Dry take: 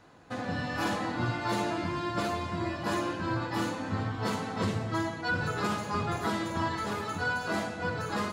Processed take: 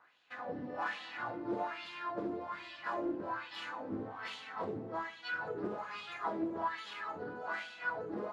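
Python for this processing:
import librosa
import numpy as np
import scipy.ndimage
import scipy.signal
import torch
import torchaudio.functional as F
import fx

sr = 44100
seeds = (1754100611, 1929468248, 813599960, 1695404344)

y = x + 10.0 ** (-10.5 / 20.0) * np.pad(x, (int(335 * sr / 1000.0), 0))[:len(x)]
y = fx.wah_lfo(y, sr, hz=1.2, low_hz=320.0, high_hz=3300.0, q=3.0)
y = fx.doppler_dist(y, sr, depth_ms=0.24)
y = F.gain(torch.from_numpy(y), 1.0).numpy()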